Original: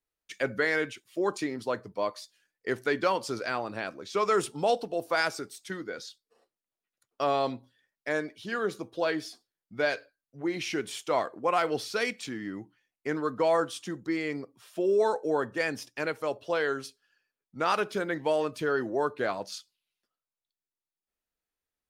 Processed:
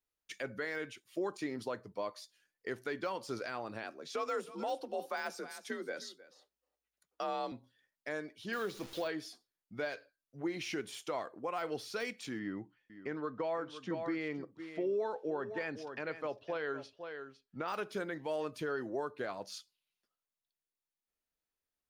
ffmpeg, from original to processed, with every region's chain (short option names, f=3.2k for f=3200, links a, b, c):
-filter_complex "[0:a]asettb=1/sr,asplit=3[a][b][c];[a]atrim=end=3.834[d];[b]atrim=start=3.83:end=7.52,asetpts=PTS-STARTPTS,afade=t=in:d=0.004:c=qsin,afade=t=out:st=3.686:d=0.004:c=qsin,afreqshift=52,aecho=1:1:312:0.119,atrim=end_sample=162729[e];[c]atrim=start=7.516[f];[d][e]acrossfade=d=0.004:c1=hsin:c2=qsin[g];[g][f]acrossfade=d=0.004:c1=qsin:c2=hsin,asettb=1/sr,asplit=3[h][i][j];[h]atrim=end=8.534[k];[i]atrim=start=8.53:end=9.08,asetpts=PTS-STARTPTS,afade=t=in:d=0.004:c=qsin,afade=t=out:st=0.546:d=0.004:c=qsin,aeval=exprs='val(0)+0.5*0.00708*sgn(val(0))':c=same,equalizer=f=4k:t=o:w=1.6:g=9,acrusher=bits=8:dc=4:mix=0:aa=0.000001[l];[j]atrim=start=9.076[m];[k][l]acrossfade=d=0.004:c1=hsin:c2=qsin[n];[n][m]acrossfade=d=0.004:c1=qsin:c2=hsin,asettb=1/sr,asplit=3[o][p][q];[o]atrim=end=12.394[r];[p]atrim=start=12.39:end=17.68,asetpts=PTS-STARTPTS,afade=t=in:d=0.004:c=qsin,afade=t=out:st=5.286:d=0.004:c=qsin,lowpass=3.6k,aecho=1:1:507:0.211,atrim=end_sample=233289[s];[q]atrim=start=17.676[t];[r][s]acrossfade=d=0.004:c1=hsin:c2=qsin[u];[u][t]acrossfade=d=0.004:c1=qsin:c2=hsin,bandreject=f=7.9k:w=14,deesser=0.9,alimiter=level_in=0.5dB:limit=-24dB:level=0:latency=1:release=366,volume=-0.5dB,volume=-3dB"